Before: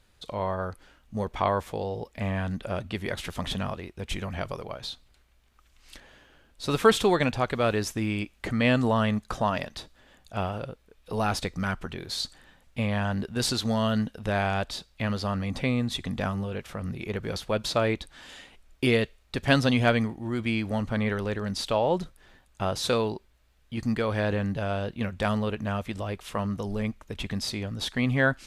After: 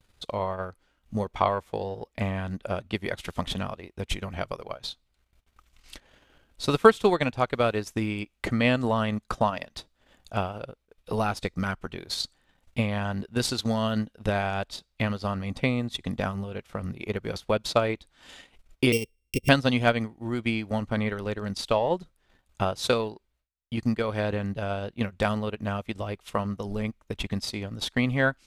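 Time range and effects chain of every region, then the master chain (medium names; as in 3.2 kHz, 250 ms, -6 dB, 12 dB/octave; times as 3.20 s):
18.92–19.49 s: sorted samples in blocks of 16 samples + Chebyshev band-stop 510–2100 Hz, order 5 + peaking EQ 3.9 kHz -9.5 dB 0.25 oct
whole clip: gate with hold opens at -54 dBFS; band-stop 1.7 kHz, Q 20; transient shaper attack +6 dB, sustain -11 dB; trim -1.5 dB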